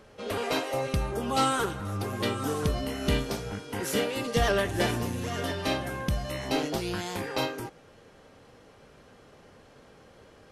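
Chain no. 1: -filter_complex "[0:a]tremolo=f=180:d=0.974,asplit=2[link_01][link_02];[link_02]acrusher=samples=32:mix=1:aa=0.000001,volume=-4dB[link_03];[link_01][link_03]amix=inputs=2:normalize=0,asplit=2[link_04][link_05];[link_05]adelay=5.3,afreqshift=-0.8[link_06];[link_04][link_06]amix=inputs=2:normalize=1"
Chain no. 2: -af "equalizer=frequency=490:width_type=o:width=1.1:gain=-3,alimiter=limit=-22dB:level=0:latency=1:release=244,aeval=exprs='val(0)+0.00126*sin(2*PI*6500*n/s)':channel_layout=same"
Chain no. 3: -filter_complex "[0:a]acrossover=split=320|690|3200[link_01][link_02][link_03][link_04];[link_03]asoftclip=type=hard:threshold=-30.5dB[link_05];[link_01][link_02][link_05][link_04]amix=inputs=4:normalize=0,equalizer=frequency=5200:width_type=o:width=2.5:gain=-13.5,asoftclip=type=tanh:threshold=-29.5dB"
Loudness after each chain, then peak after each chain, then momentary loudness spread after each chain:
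−34.5, −34.0, −36.0 LKFS; −12.0, −22.0, −29.5 dBFS; 7, 21, 4 LU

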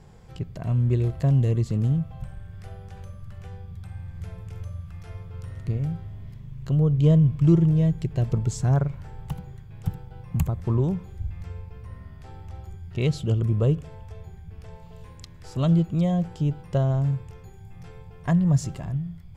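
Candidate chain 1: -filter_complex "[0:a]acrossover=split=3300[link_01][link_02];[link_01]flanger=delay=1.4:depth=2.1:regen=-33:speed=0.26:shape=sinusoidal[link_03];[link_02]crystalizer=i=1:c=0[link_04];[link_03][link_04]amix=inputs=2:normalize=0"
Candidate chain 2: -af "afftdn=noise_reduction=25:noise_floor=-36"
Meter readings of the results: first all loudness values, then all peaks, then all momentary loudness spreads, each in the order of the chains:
−28.5, −24.0 LKFS; −12.0, −8.5 dBFS; 22, 22 LU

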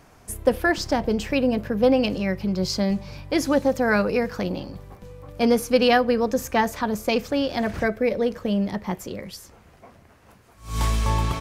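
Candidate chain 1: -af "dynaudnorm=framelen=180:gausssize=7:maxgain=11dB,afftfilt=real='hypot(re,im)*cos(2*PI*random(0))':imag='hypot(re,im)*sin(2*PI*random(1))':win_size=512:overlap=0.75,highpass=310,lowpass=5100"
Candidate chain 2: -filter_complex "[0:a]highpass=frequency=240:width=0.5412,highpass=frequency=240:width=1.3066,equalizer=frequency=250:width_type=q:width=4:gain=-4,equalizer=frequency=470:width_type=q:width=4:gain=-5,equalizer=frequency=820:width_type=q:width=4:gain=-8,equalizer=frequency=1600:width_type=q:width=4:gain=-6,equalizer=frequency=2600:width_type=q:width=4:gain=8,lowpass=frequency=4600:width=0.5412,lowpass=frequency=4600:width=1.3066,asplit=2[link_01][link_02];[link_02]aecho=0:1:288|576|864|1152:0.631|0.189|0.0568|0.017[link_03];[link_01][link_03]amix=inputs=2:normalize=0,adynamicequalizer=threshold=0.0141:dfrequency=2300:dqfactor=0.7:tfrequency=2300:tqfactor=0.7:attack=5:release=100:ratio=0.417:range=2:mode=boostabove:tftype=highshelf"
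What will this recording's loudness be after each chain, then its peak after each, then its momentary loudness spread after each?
−25.0, −24.0 LKFS; −7.0, −6.0 dBFS; 11, 14 LU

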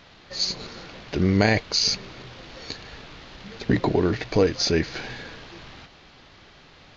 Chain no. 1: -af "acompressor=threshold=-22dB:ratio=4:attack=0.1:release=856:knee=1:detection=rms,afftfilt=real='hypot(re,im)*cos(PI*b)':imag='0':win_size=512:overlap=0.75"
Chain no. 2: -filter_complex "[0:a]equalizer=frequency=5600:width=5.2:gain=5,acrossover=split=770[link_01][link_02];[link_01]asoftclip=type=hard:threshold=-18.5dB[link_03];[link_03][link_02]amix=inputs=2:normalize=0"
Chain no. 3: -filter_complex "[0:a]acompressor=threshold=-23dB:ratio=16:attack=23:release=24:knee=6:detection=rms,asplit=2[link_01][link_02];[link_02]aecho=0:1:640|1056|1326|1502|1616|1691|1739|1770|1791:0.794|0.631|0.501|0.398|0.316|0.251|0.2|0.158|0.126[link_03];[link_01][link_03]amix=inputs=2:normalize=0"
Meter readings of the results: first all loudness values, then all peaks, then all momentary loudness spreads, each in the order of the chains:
−37.0, −24.5, −25.0 LKFS; −18.0, −6.5, −9.5 dBFS; 19, 21, 8 LU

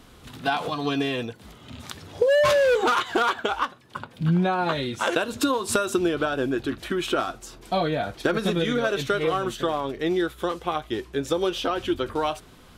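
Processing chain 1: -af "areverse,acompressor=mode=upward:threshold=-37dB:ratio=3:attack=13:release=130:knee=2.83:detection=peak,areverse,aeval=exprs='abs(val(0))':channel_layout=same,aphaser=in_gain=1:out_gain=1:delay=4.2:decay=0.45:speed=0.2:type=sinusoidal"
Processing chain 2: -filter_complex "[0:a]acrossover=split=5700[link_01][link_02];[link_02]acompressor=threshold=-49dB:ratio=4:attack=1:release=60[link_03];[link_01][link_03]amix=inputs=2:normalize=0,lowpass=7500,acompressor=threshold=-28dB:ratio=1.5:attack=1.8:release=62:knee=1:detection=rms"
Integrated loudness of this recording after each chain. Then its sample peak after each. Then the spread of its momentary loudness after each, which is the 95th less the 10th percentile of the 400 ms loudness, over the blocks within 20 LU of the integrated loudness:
−28.5, −28.5 LKFS; −5.5, −14.5 dBFS; 10, 10 LU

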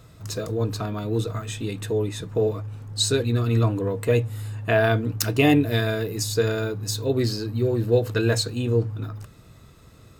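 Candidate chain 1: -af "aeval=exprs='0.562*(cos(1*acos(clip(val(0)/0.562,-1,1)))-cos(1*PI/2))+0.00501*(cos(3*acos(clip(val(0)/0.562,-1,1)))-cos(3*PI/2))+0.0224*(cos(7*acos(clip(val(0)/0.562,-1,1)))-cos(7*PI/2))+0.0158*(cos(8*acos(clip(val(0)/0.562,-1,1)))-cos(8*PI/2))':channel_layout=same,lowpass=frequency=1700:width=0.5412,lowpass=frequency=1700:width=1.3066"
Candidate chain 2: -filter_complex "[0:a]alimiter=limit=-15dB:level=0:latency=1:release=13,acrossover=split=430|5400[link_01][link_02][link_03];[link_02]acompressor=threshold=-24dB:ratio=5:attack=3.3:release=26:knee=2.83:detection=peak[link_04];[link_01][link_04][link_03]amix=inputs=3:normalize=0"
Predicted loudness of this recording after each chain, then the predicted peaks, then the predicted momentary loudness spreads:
−26.0, −26.0 LKFS; −6.5, −12.0 dBFS; 13, 8 LU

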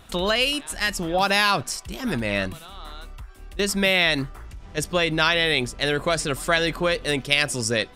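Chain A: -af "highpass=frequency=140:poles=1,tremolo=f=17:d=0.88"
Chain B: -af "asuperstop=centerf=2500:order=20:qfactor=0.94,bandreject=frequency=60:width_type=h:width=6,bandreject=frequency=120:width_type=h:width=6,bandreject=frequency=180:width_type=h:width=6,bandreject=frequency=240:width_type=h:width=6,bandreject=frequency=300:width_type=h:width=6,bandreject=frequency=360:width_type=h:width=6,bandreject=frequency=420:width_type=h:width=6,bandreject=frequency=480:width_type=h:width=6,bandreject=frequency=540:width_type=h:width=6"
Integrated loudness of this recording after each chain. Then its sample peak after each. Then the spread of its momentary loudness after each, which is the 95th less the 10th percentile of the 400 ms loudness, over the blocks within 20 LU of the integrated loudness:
−26.5, −26.0 LKFS; −5.0, −10.0 dBFS; 12, 17 LU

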